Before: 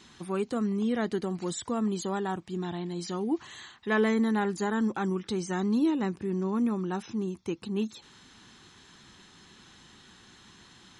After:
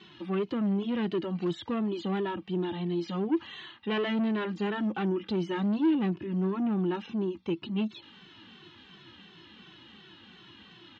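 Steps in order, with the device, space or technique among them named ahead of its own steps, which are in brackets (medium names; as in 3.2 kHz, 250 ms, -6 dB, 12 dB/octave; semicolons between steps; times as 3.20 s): barber-pole flanger into a guitar amplifier (endless flanger 2.2 ms -2.8 Hz; saturation -30 dBFS, distortion -10 dB; cabinet simulation 82–4000 Hz, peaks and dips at 190 Hz +4 dB, 330 Hz +7 dB, 2.9 kHz +9 dB); trim +3 dB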